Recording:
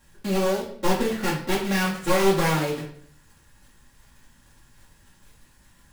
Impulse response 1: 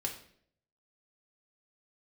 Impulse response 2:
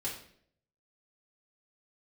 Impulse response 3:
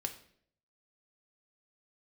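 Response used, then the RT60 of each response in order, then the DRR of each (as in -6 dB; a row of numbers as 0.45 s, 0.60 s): 2; 0.60 s, 0.60 s, 0.60 s; 0.0 dB, -6.5 dB, 4.5 dB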